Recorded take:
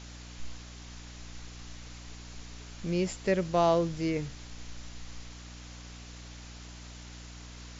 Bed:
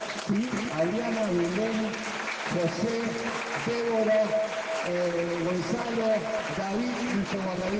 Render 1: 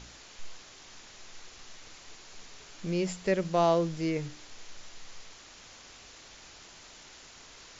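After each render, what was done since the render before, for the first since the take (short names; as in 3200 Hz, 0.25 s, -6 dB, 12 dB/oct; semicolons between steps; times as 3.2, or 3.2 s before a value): de-hum 60 Hz, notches 5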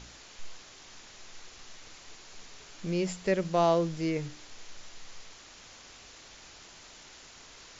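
nothing audible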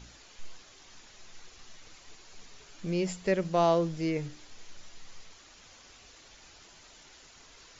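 denoiser 6 dB, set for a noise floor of -52 dBFS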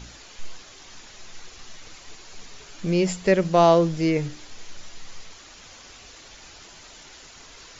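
gain +8.5 dB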